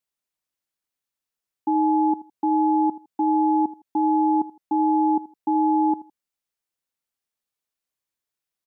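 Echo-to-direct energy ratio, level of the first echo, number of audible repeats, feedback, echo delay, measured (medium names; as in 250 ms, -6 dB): -17.5 dB, -17.5 dB, 2, 25%, 80 ms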